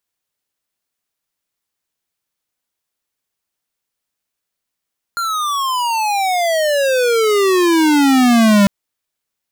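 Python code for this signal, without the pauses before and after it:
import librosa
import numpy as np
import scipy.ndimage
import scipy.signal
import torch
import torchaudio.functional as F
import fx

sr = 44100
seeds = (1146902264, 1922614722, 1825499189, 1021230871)

y = fx.riser_tone(sr, length_s=3.5, level_db=-9.5, wave='square', hz=1400.0, rise_st=-34.0, swell_db=10.0)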